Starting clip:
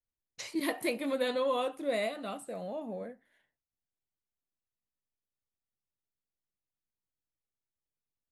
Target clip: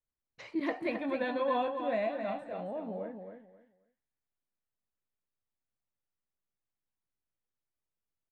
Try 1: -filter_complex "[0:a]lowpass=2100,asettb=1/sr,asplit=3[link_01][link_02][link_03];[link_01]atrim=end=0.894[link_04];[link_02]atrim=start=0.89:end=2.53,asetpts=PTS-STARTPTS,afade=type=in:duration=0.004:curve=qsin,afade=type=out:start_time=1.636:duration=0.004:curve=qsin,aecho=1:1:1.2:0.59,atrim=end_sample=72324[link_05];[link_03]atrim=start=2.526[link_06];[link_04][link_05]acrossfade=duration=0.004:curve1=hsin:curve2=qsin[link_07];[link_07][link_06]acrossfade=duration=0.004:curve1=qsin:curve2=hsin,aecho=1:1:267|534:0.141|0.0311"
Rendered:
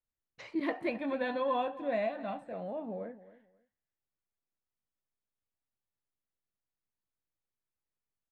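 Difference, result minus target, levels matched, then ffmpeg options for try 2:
echo-to-direct −10 dB
-filter_complex "[0:a]lowpass=2100,asettb=1/sr,asplit=3[link_01][link_02][link_03];[link_01]atrim=end=0.894[link_04];[link_02]atrim=start=0.89:end=2.53,asetpts=PTS-STARTPTS,afade=type=in:duration=0.004:curve=qsin,afade=type=out:start_time=1.636:duration=0.004:curve=qsin,aecho=1:1:1.2:0.59,atrim=end_sample=72324[link_05];[link_03]atrim=start=2.526[link_06];[link_04][link_05]acrossfade=duration=0.004:curve1=hsin:curve2=qsin[link_07];[link_07][link_06]acrossfade=duration=0.004:curve1=qsin:curve2=hsin,aecho=1:1:267|534|801:0.447|0.0983|0.0216"

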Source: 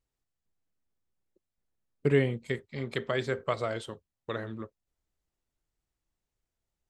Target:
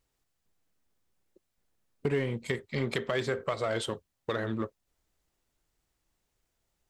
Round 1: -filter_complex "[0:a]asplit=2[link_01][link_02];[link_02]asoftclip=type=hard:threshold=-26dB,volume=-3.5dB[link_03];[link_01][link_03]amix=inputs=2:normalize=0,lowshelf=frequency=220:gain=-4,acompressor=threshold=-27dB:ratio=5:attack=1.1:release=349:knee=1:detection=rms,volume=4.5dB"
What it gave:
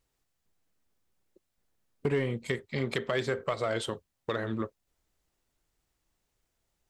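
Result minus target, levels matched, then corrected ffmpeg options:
hard clipping: distortion −4 dB
-filter_complex "[0:a]asplit=2[link_01][link_02];[link_02]asoftclip=type=hard:threshold=-32.5dB,volume=-3.5dB[link_03];[link_01][link_03]amix=inputs=2:normalize=0,lowshelf=frequency=220:gain=-4,acompressor=threshold=-27dB:ratio=5:attack=1.1:release=349:knee=1:detection=rms,volume=4.5dB"

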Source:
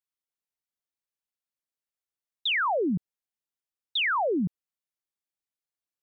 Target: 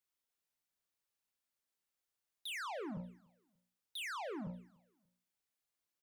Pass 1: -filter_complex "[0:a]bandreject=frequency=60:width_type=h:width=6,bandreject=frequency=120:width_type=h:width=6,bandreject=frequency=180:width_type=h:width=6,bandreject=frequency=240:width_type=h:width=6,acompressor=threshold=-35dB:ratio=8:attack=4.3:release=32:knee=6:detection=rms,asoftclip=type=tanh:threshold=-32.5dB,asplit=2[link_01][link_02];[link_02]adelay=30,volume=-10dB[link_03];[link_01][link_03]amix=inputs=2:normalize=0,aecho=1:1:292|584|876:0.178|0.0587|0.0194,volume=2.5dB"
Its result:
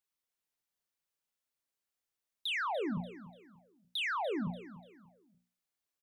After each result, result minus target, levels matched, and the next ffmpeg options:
soft clipping: distortion −13 dB; echo-to-direct +12 dB
-filter_complex "[0:a]bandreject=frequency=60:width_type=h:width=6,bandreject=frequency=120:width_type=h:width=6,bandreject=frequency=180:width_type=h:width=6,bandreject=frequency=240:width_type=h:width=6,acompressor=threshold=-35dB:ratio=8:attack=4.3:release=32:knee=6:detection=rms,asoftclip=type=tanh:threshold=-44.5dB,asplit=2[link_01][link_02];[link_02]adelay=30,volume=-10dB[link_03];[link_01][link_03]amix=inputs=2:normalize=0,aecho=1:1:292|584|876:0.178|0.0587|0.0194,volume=2.5dB"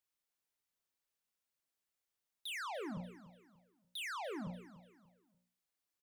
echo-to-direct +12 dB
-filter_complex "[0:a]bandreject=frequency=60:width_type=h:width=6,bandreject=frequency=120:width_type=h:width=6,bandreject=frequency=180:width_type=h:width=6,bandreject=frequency=240:width_type=h:width=6,acompressor=threshold=-35dB:ratio=8:attack=4.3:release=32:knee=6:detection=rms,asoftclip=type=tanh:threshold=-44.5dB,asplit=2[link_01][link_02];[link_02]adelay=30,volume=-10dB[link_03];[link_01][link_03]amix=inputs=2:normalize=0,aecho=1:1:292|584:0.0447|0.0147,volume=2.5dB"

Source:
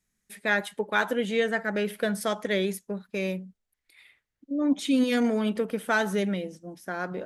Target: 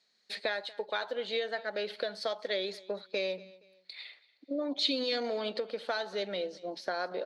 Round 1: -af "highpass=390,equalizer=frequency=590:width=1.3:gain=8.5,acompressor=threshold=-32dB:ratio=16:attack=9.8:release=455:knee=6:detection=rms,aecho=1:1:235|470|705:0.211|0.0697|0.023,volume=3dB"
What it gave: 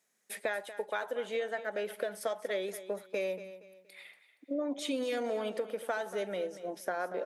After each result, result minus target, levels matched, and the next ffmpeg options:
4,000 Hz band −9.5 dB; echo-to-direct +7.5 dB
-af "highpass=390,equalizer=frequency=590:width=1.3:gain=8.5,acompressor=threshold=-32dB:ratio=16:attack=9.8:release=455:knee=6:detection=rms,lowpass=frequency=4300:width_type=q:width=12,aecho=1:1:235|470|705:0.211|0.0697|0.023,volume=3dB"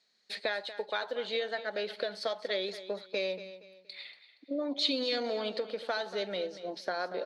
echo-to-direct +7.5 dB
-af "highpass=390,equalizer=frequency=590:width=1.3:gain=8.5,acompressor=threshold=-32dB:ratio=16:attack=9.8:release=455:knee=6:detection=rms,lowpass=frequency=4300:width_type=q:width=12,aecho=1:1:235|470:0.0891|0.0294,volume=3dB"

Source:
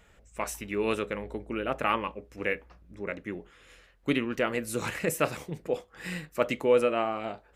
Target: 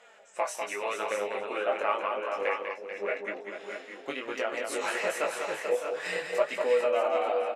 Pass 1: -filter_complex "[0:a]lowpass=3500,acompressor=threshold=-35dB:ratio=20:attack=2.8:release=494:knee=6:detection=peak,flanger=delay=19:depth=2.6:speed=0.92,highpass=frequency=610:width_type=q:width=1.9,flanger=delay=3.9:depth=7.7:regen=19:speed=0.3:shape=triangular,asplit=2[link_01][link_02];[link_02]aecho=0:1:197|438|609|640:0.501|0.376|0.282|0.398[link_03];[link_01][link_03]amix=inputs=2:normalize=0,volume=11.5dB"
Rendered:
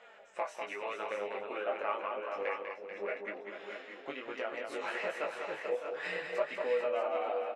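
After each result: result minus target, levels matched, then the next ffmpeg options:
8,000 Hz band −11.0 dB; downward compressor: peak gain reduction +6.5 dB
-filter_complex "[0:a]lowpass=8400,acompressor=threshold=-35dB:ratio=20:attack=2.8:release=494:knee=6:detection=peak,flanger=delay=19:depth=2.6:speed=0.92,highpass=frequency=610:width_type=q:width=1.9,flanger=delay=3.9:depth=7.7:regen=19:speed=0.3:shape=triangular,asplit=2[link_01][link_02];[link_02]aecho=0:1:197|438|609|640:0.501|0.376|0.282|0.398[link_03];[link_01][link_03]amix=inputs=2:normalize=0,volume=11.5dB"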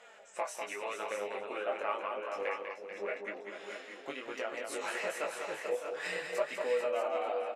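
downward compressor: peak gain reduction +6.5 dB
-filter_complex "[0:a]lowpass=8400,acompressor=threshold=-28dB:ratio=20:attack=2.8:release=494:knee=6:detection=peak,flanger=delay=19:depth=2.6:speed=0.92,highpass=frequency=610:width_type=q:width=1.9,flanger=delay=3.9:depth=7.7:regen=19:speed=0.3:shape=triangular,asplit=2[link_01][link_02];[link_02]aecho=0:1:197|438|609|640:0.501|0.376|0.282|0.398[link_03];[link_01][link_03]amix=inputs=2:normalize=0,volume=11.5dB"

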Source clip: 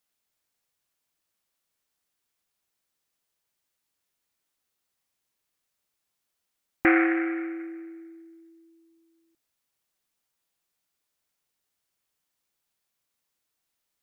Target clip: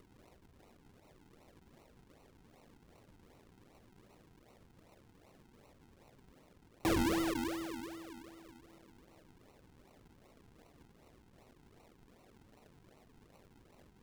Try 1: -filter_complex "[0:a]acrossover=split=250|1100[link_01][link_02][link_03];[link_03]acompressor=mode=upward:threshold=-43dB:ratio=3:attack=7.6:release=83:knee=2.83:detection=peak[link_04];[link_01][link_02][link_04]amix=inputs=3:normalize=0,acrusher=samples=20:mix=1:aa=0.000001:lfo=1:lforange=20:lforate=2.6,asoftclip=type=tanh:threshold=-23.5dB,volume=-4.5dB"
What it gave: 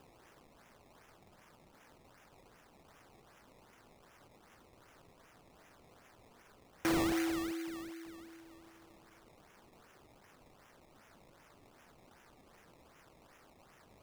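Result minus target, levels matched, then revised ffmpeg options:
sample-and-hold swept by an LFO: distortion −10 dB
-filter_complex "[0:a]acrossover=split=250|1100[link_01][link_02][link_03];[link_03]acompressor=mode=upward:threshold=-43dB:ratio=3:attack=7.6:release=83:knee=2.83:detection=peak[link_04];[link_01][link_02][link_04]amix=inputs=3:normalize=0,acrusher=samples=52:mix=1:aa=0.000001:lfo=1:lforange=52:lforate=2.6,asoftclip=type=tanh:threshold=-23.5dB,volume=-4.5dB"

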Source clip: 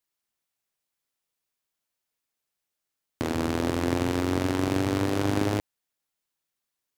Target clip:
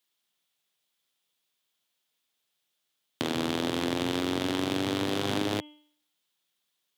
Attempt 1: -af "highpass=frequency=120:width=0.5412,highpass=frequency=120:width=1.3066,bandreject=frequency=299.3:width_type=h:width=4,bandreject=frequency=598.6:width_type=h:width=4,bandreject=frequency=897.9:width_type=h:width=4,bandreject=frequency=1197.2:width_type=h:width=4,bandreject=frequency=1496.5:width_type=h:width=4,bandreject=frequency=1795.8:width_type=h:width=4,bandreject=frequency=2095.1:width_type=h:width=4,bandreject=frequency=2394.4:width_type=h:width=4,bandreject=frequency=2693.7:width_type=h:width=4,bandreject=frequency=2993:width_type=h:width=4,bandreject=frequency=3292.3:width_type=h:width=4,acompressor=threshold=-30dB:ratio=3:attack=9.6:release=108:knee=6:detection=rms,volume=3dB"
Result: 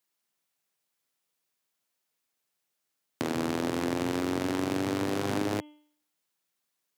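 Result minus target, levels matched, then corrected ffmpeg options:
4,000 Hz band −6.5 dB
-af "highpass=frequency=120:width=0.5412,highpass=frequency=120:width=1.3066,bandreject=frequency=299.3:width_type=h:width=4,bandreject=frequency=598.6:width_type=h:width=4,bandreject=frequency=897.9:width_type=h:width=4,bandreject=frequency=1197.2:width_type=h:width=4,bandreject=frequency=1496.5:width_type=h:width=4,bandreject=frequency=1795.8:width_type=h:width=4,bandreject=frequency=2095.1:width_type=h:width=4,bandreject=frequency=2394.4:width_type=h:width=4,bandreject=frequency=2693.7:width_type=h:width=4,bandreject=frequency=2993:width_type=h:width=4,bandreject=frequency=3292.3:width_type=h:width=4,acompressor=threshold=-30dB:ratio=3:attack=9.6:release=108:knee=6:detection=rms,equalizer=frequency=3400:width=2.3:gain=10.5,volume=3dB"

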